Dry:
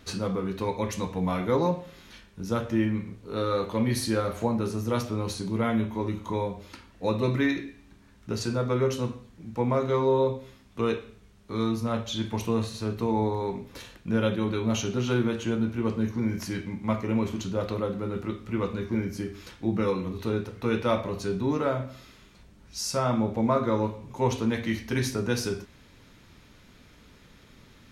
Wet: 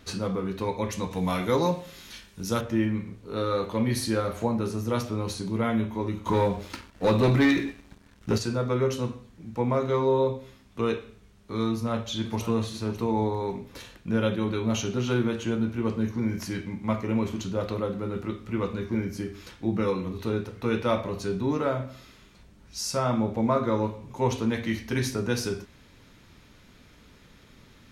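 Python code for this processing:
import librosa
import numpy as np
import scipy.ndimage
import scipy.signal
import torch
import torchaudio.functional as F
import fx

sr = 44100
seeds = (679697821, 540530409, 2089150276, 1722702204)

y = fx.high_shelf(x, sr, hz=3000.0, db=11.5, at=(1.11, 2.61))
y = fx.leveller(y, sr, passes=2, at=(6.26, 8.38))
y = fx.echo_throw(y, sr, start_s=11.7, length_s=0.79, ms=550, feedback_pct=15, wet_db=-13.0)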